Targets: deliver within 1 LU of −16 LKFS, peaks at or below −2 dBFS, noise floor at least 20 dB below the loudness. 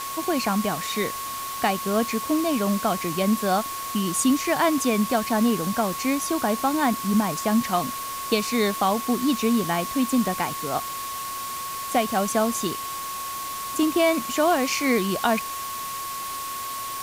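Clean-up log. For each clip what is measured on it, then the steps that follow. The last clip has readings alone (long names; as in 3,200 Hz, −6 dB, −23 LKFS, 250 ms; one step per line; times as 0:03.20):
interfering tone 1,100 Hz; level of the tone −31 dBFS; background noise floor −32 dBFS; target noise floor −44 dBFS; integrated loudness −24.0 LKFS; sample peak −9.0 dBFS; target loudness −16.0 LKFS
→ notch filter 1,100 Hz, Q 30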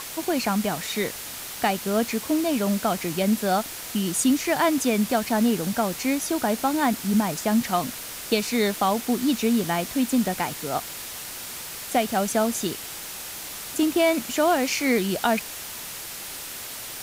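interfering tone none found; background noise floor −36 dBFS; target noise floor −45 dBFS
→ noise reduction from a noise print 9 dB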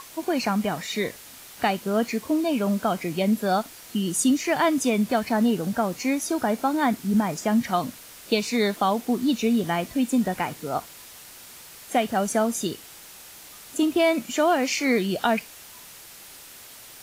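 background noise floor −45 dBFS; integrated loudness −24.5 LKFS; sample peak −9.5 dBFS; target loudness −16.0 LKFS
→ level +8.5 dB
brickwall limiter −2 dBFS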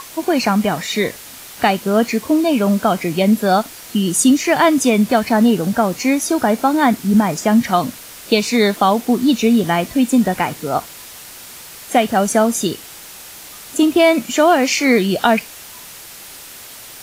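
integrated loudness −16.0 LKFS; sample peak −2.0 dBFS; background noise floor −37 dBFS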